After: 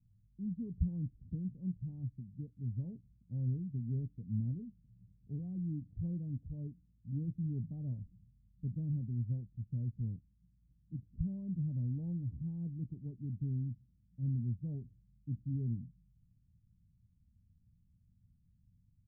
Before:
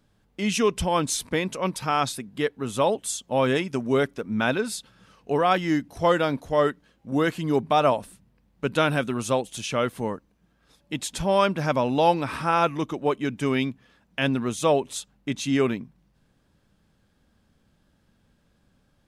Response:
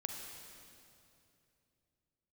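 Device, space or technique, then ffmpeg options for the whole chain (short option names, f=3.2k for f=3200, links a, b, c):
the neighbour's flat through the wall: -filter_complex "[0:a]lowpass=f=170:w=0.5412,lowpass=f=170:w=1.3066,equalizer=f=95:t=o:w=0.59:g=8,highshelf=f=1.5k:t=q:w=1.5:g=-12.5,asplit=2[a][b];[b]adelay=17,volume=-12dB[c];[a][c]amix=inputs=2:normalize=0,volume=-4dB"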